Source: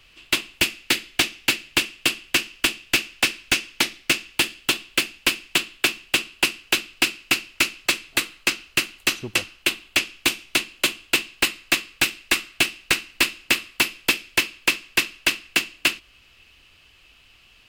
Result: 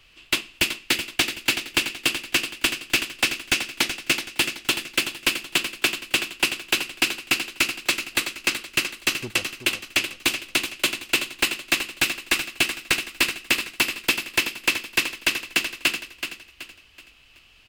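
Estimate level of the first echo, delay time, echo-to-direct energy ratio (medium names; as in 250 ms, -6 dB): -9.0 dB, 377 ms, -8.5 dB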